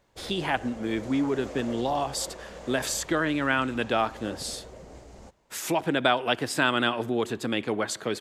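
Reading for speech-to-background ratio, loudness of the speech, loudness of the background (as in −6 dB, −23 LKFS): 16.0 dB, −27.5 LKFS, −43.5 LKFS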